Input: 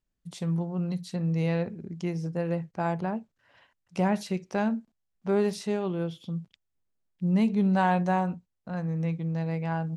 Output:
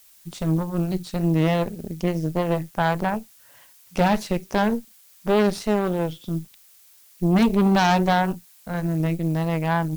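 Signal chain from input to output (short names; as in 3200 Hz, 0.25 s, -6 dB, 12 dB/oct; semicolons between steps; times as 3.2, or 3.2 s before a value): vibrato 3.4 Hz 57 cents; added noise blue -57 dBFS; added harmonics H 6 -12 dB, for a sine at -14 dBFS; gain +4.5 dB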